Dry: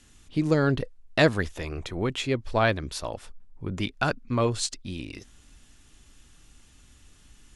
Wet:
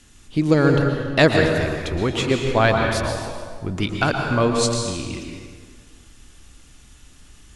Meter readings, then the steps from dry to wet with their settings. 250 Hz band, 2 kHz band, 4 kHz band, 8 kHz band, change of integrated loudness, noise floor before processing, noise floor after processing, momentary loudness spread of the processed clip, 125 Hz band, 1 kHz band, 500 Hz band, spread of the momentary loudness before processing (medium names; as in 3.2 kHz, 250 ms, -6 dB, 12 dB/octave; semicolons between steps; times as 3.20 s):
+7.5 dB, +7.0 dB, +6.5 dB, +7.0 dB, +7.0 dB, -56 dBFS, -49 dBFS, 15 LU, +7.0 dB, +7.5 dB, +7.5 dB, 15 LU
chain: plate-style reverb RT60 1.7 s, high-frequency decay 0.75×, pre-delay 105 ms, DRR 2 dB; trim +5 dB